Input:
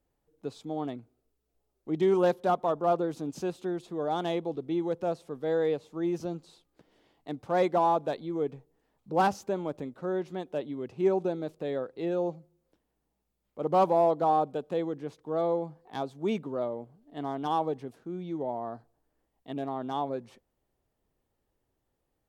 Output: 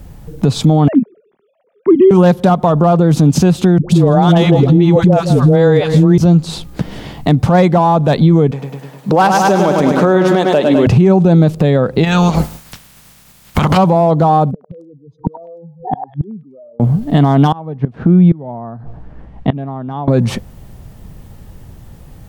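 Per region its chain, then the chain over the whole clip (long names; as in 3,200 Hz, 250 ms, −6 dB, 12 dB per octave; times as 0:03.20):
0:00.88–0:02.11: three sine waves on the formant tracks + parametric band 220 Hz +12.5 dB 1.2 octaves + downward compressor 4 to 1, threshold −23 dBFS
0:03.78–0:06.18: all-pass dispersion highs, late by 115 ms, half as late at 490 Hz + repeating echo 163 ms, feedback 30%, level −17 dB
0:08.51–0:10.87: high-pass filter 370 Hz + repeating echo 103 ms, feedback 58%, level −8 dB
0:12.03–0:13.76: ceiling on every frequency bin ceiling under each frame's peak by 30 dB + downward compressor 5 to 1, threshold −44 dBFS
0:14.51–0:16.80: expanding power law on the bin magnitudes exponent 2.7 + gate with flip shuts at −40 dBFS, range −40 dB + echo through a band-pass that steps 101 ms, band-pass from 1,000 Hz, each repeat 1.4 octaves, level −5 dB
0:17.52–0:20.08: low-pass filter 2,200 Hz + gate with flip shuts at −29 dBFS, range −27 dB
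whole clip: low shelf with overshoot 240 Hz +10.5 dB, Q 1.5; downward compressor 8 to 1, threshold −38 dBFS; boost into a limiter +36 dB; level −1 dB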